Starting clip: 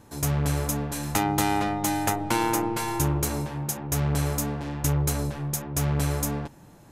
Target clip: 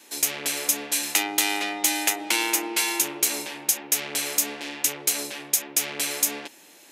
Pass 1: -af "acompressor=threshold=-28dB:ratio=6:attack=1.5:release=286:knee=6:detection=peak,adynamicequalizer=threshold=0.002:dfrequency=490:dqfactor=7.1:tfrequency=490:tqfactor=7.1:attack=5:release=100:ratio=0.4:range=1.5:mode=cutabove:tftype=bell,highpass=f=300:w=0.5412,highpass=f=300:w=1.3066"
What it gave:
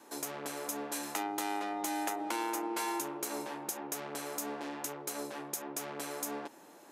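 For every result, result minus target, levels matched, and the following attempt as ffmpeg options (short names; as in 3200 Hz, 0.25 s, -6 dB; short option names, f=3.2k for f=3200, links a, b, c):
compressor: peak gain reduction +6.5 dB; 4000 Hz band -4.5 dB
-af "acompressor=threshold=-20dB:ratio=6:attack=1.5:release=286:knee=6:detection=peak,adynamicequalizer=threshold=0.002:dfrequency=490:dqfactor=7.1:tfrequency=490:tqfactor=7.1:attack=5:release=100:ratio=0.4:range=1.5:mode=cutabove:tftype=bell,highpass=f=300:w=0.5412,highpass=f=300:w=1.3066"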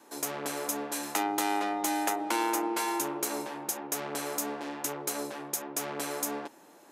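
4000 Hz band -4.5 dB
-af "acompressor=threshold=-20dB:ratio=6:attack=1.5:release=286:knee=6:detection=peak,adynamicequalizer=threshold=0.002:dfrequency=490:dqfactor=7.1:tfrequency=490:tqfactor=7.1:attack=5:release=100:ratio=0.4:range=1.5:mode=cutabove:tftype=bell,highpass=f=300:w=0.5412,highpass=f=300:w=1.3066,highshelf=f=1.7k:t=q:w=1.5:g=11"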